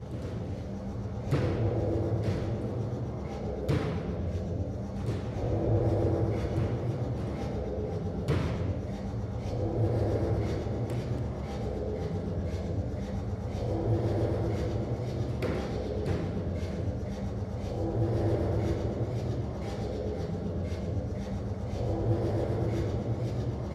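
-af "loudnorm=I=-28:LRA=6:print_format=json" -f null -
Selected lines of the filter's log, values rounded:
"input_i" : "-32.1",
"input_tp" : "-16.8",
"input_lra" : "2.2",
"input_thresh" : "-42.1",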